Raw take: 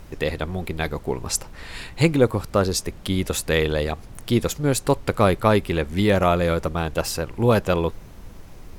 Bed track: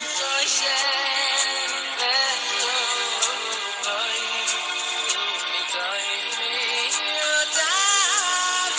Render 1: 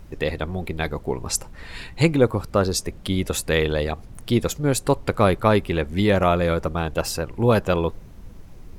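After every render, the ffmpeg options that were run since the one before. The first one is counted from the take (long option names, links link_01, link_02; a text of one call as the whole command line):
ffmpeg -i in.wav -af "afftdn=noise_reduction=6:noise_floor=-42" out.wav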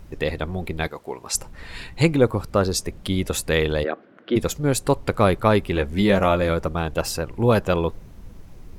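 ffmpeg -i in.wav -filter_complex "[0:a]asettb=1/sr,asplit=3[link_01][link_02][link_03];[link_01]atrim=end=0.874[link_04];[link_02]atrim=start=0.87:end=1.35,asetpts=PTS-STARTPTS,afade=type=in:duration=0.004:curve=qsin,afade=type=out:start_time=0.476:duration=0.004:curve=qsin,highpass=frequency=710:poles=1[link_05];[link_03]atrim=start=1.346[link_06];[link_04][link_05]acrossfade=duration=0.004:curve1=hsin:curve2=qsin[link_07];[link_07][link_06]acrossfade=duration=0.004:curve1=qsin:curve2=hsin,asplit=3[link_08][link_09][link_10];[link_08]afade=type=out:start_time=3.83:duration=0.02[link_11];[link_09]highpass=frequency=240:width=0.5412,highpass=frequency=240:width=1.3066,equalizer=frequency=330:width_type=q:width=4:gain=5,equalizer=frequency=560:width_type=q:width=4:gain=6,equalizer=frequency=880:width_type=q:width=4:gain=-7,equalizer=frequency=1500:width_type=q:width=4:gain=9,equalizer=frequency=2500:width_type=q:width=4:gain=-4,lowpass=frequency=3000:width=0.5412,lowpass=frequency=3000:width=1.3066,afade=type=in:start_time=3.83:duration=0.02,afade=type=out:start_time=4.35:duration=0.02[link_12];[link_10]afade=type=in:start_time=4.35:duration=0.02[link_13];[link_11][link_12][link_13]amix=inputs=3:normalize=0,asettb=1/sr,asplit=3[link_14][link_15][link_16];[link_14]atrim=end=5.744[link_17];[link_15]atrim=start=5.74:end=6.49,asetpts=PTS-STARTPTS,afade=type=in:duration=0.004:curve=qsin,afade=type=out:start_time=0.746:duration=0.004:curve=qsin,asplit=2[link_18][link_19];[link_19]adelay=15,volume=-7dB[link_20];[link_18][link_20]amix=inputs=2:normalize=0,atrim=end_sample=33075[link_21];[link_16]atrim=start=6.486[link_22];[link_17][link_21]acrossfade=duration=0.004:curve1=hsin:curve2=qsin[link_23];[link_23][link_22]acrossfade=duration=0.004:curve1=qsin:curve2=hsin" out.wav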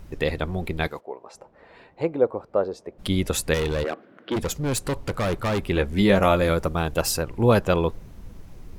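ffmpeg -i in.wav -filter_complex "[0:a]asplit=3[link_01][link_02][link_03];[link_01]afade=type=out:start_time=0.99:duration=0.02[link_04];[link_02]bandpass=frequency=590:width_type=q:width=1.6,afade=type=in:start_time=0.99:duration=0.02,afade=type=out:start_time=2.98:duration=0.02[link_05];[link_03]afade=type=in:start_time=2.98:duration=0.02[link_06];[link_04][link_05][link_06]amix=inputs=3:normalize=0,asettb=1/sr,asplit=3[link_07][link_08][link_09];[link_07]atrim=end=3.544[link_10];[link_08]atrim=start=3.54:end=5.59,asetpts=PTS-STARTPTS,afade=type=in:duration=0.004:curve=qsin,afade=type=out:start_time=2.046:duration=0.004:curve=qsin,volume=21.5dB,asoftclip=hard,volume=-21.5dB[link_11];[link_09]atrim=start=5.586[link_12];[link_10][link_11]acrossfade=duration=0.004:curve1=hsin:curve2=qsin[link_13];[link_13][link_12]acrossfade=duration=0.004:curve1=qsin:curve2=hsin,asettb=1/sr,asplit=3[link_14][link_15][link_16];[link_14]atrim=end=6.224[link_17];[link_15]atrim=start=6.22:end=7.23,asetpts=PTS-STARTPTS,afade=type=in:duration=0.004:curve=qsin,afade=type=out:start_time=1.006:duration=0.004:curve=qsin,highshelf=frequency=7400:gain=7.5[link_18];[link_16]atrim=start=7.226[link_19];[link_17][link_18]acrossfade=duration=0.004:curve1=hsin:curve2=qsin[link_20];[link_20][link_19]acrossfade=duration=0.004:curve1=qsin:curve2=hsin" out.wav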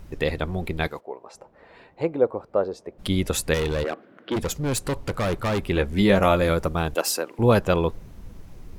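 ffmpeg -i in.wav -filter_complex "[0:a]asettb=1/sr,asplit=3[link_01][link_02][link_03];[link_01]atrim=end=6.954[link_04];[link_02]atrim=start=6.95:end=7.39,asetpts=PTS-STARTPTS,afade=type=in:duration=0.004:curve=qsin,afade=type=out:start_time=0.436:duration=0.004:curve=qsin,highpass=frequency=260:width=0.5412,highpass=frequency=260:width=1.3066[link_05];[link_03]atrim=start=7.386[link_06];[link_04][link_05]acrossfade=duration=0.004:curve1=hsin:curve2=qsin[link_07];[link_07][link_06]acrossfade=duration=0.004:curve1=qsin:curve2=hsin" out.wav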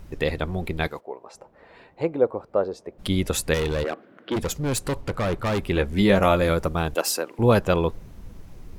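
ffmpeg -i in.wav -filter_complex "[0:a]asettb=1/sr,asplit=3[link_01][link_02][link_03];[link_01]atrim=end=5.014[link_04];[link_02]atrim=start=5.01:end=5.47,asetpts=PTS-STARTPTS,afade=type=in:duration=0.004:curve=qsin,afade=type=out:start_time=0.456:duration=0.004:curve=qsin,highshelf=frequency=4700:gain=-6[link_05];[link_03]atrim=start=5.466[link_06];[link_04][link_05]acrossfade=duration=0.004:curve1=hsin:curve2=qsin[link_07];[link_07][link_06]acrossfade=duration=0.004:curve1=qsin:curve2=hsin" out.wav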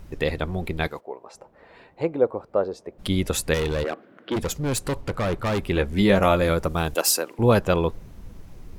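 ffmpeg -i in.wav -filter_complex "[0:a]asettb=1/sr,asplit=3[link_01][link_02][link_03];[link_01]atrim=end=6.694[link_04];[link_02]atrim=start=6.69:end=7.34,asetpts=PTS-STARTPTS,afade=type=in:duration=0.004:curve=qsin,afade=type=out:start_time=0.646:duration=0.004:curve=qsin,highshelf=frequency=4400:gain=7[link_05];[link_03]atrim=start=7.336[link_06];[link_04][link_05]acrossfade=duration=0.004:curve1=hsin:curve2=qsin[link_07];[link_07][link_06]acrossfade=duration=0.004:curve1=qsin:curve2=hsin" out.wav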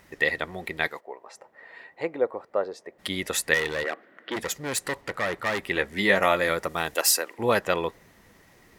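ffmpeg -i in.wav -af "highpass=frequency=650:poles=1,equalizer=frequency=1900:width=6.8:gain=13" out.wav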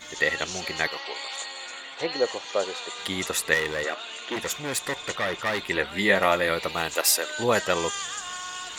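ffmpeg -i in.wav -i bed.wav -filter_complex "[1:a]volume=-13dB[link_01];[0:a][link_01]amix=inputs=2:normalize=0" out.wav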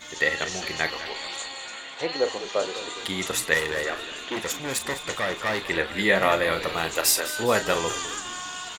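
ffmpeg -i in.wav -filter_complex "[0:a]asplit=2[link_01][link_02];[link_02]adelay=37,volume=-11dB[link_03];[link_01][link_03]amix=inputs=2:normalize=0,asplit=6[link_04][link_05][link_06][link_07][link_08][link_09];[link_05]adelay=204,afreqshift=-66,volume=-13.5dB[link_10];[link_06]adelay=408,afreqshift=-132,volume=-19.5dB[link_11];[link_07]adelay=612,afreqshift=-198,volume=-25.5dB[link_12];[link_08]adelay=816,afreqshift=-264,volume=-31.6dB[link_13];[link_09]adelay=1020,afreqshift=-330,volume=-37.6dB[link_14];[link_04][link_10][link_11][link_12][link_13][link_14]amix=inputs=6:normalize=0" out.wav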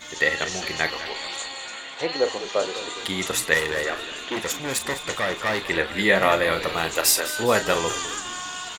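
ffmpeg -i in.wav -af "volume=2dB" out.wav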